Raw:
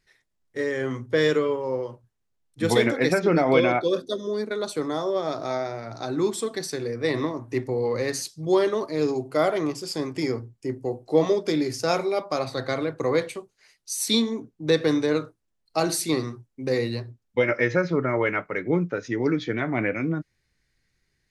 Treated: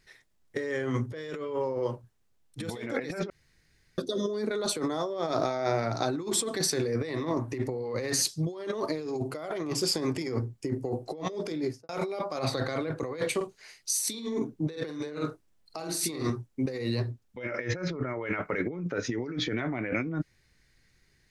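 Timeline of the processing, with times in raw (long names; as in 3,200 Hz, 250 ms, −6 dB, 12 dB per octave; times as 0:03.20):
0:03.30–0:03.98: fill with room tone
0:11.39–0:11.89: fade out and dull
0:13.36–0:16.30: double-tracking delay 47 ms −5 dB
whole clip: compressor whose output falls as the input rises −32 dBFS, ratio −1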